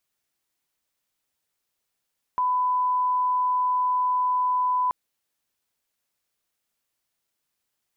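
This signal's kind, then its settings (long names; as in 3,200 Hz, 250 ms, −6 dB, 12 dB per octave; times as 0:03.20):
line-up tone −20 dBFS 2.53 s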